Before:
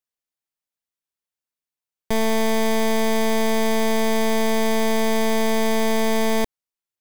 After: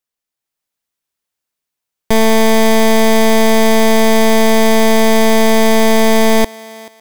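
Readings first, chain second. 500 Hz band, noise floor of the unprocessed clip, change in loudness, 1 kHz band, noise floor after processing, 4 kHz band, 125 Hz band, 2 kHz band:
+10.0 dB, under -85 dBFS, +10.0 dB, +10.0 dB, -84 dBFS, +10.0 dB, no reading, +10.0 dB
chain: level rider gain up to 4.5 dB; thinning echo 434 ms, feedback 30%, high-pass 420 Hz, level -19 dB; trim +5.5 dB

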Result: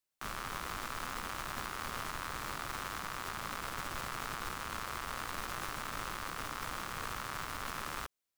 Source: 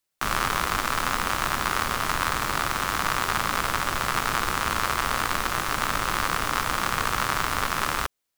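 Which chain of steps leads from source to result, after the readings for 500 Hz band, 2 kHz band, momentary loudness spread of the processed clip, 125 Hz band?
-14.0 dB, -15.0 dB, 1 LU, -13.5 dB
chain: peak limiter -17.5 dBFS, peak gain reduction 11 dB; trim -8 dB

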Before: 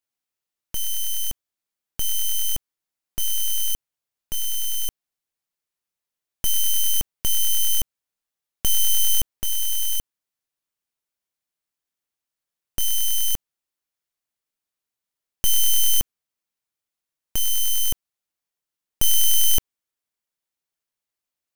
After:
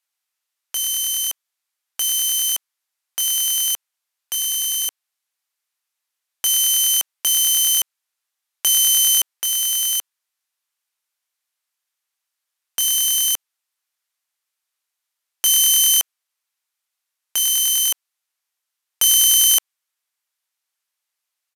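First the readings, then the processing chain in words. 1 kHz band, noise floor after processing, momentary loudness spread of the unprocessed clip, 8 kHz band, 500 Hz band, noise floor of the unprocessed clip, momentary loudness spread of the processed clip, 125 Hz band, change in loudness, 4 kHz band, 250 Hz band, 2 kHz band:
+5.5 dB, -82 dBFS, 13 LU, +8.0 dB, no reading, under -85 dBFS, 13 LU, under -30 dB, +6.0 dB, +8.0 dB, under -10 dB, +8.0 dB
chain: high-pass 920 Hz 12 dB/octave; resampled via 32 kHz; trim +8 dB

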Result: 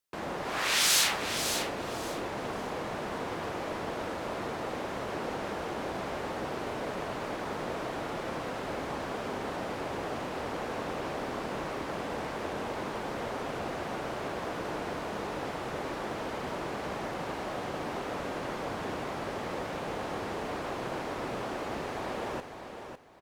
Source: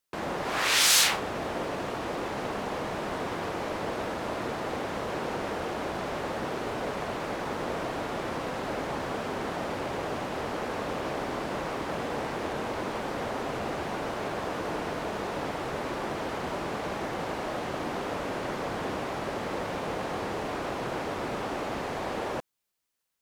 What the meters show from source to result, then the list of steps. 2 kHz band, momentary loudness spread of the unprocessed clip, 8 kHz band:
-3.0 dB, 1 LU, -3.0 dB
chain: feedback delay 553 ms, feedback 23%, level -8 dB; trim -3.5 dB

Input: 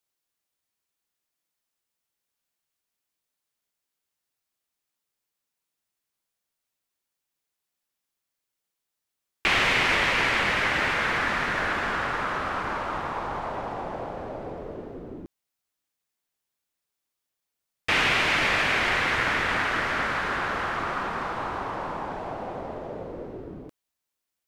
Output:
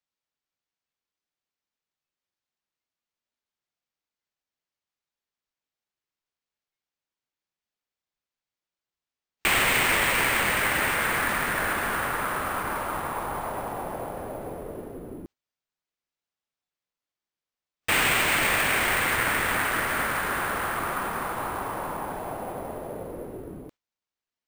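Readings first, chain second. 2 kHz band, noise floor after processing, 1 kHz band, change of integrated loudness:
-0.5 dB, under -85 dBFS, 0.0 dB, 0.0 dB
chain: careless resampling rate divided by 4×, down none, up hold; spectral noise reduction 10 dB

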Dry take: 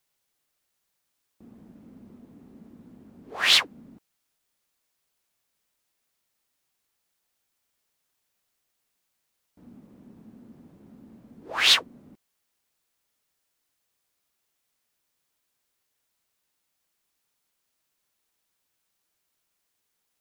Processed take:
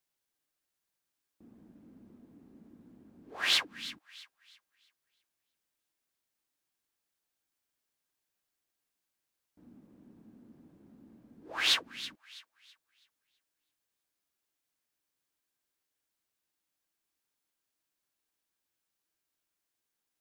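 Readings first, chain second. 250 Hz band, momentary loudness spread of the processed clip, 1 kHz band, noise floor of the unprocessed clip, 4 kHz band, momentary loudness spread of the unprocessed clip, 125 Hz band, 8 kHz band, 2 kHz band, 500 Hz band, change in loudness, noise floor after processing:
-6.5 dB, 15 LU, -8.5 dB, -78 dBFS, -8.5 dB, 16 LU, -8.5 dB, -8.5 dB, -8.0 dB, -8.0 dB, -10.0 dB, under -85 dBFS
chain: small resonant body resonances 310/1600 Hz, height 6 dB; on a send: feedback echo behind a high-pass 327 ms, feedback 33%, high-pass 1.5 kHz, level -14.5 dB; on the sum: trim -8.5 dB

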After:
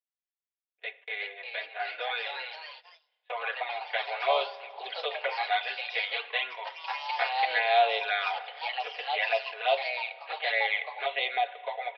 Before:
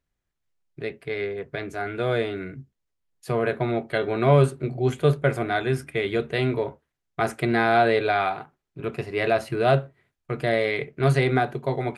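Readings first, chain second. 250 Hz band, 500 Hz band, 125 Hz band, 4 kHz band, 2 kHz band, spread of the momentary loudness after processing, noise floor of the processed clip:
under -35 dB, -10.0 dB, under -40 dB, +4.0 dB, -1.0 dB, 11 LU, under -85 dBFS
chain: touch-sensitive flanger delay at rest 8.1 ms, full sweep at -16 dBFS; peaking EQ 1.3 kHz -8.5 dB 0.51 oct; resampled via 8 kHz; steep high-pass 560 Hz 36 dB/octave; tilt EQ +3.5 dB/octave; comb 4.1 ms, depth 43%; spring tank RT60 2.5 s, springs 34 ms, chirp 70 ms, DRR 15.5 dB; ever faster or slower copies 473 ms, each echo +2 st, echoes 3, each echo -6 dB; gate -48 dBFS, range -18 dB

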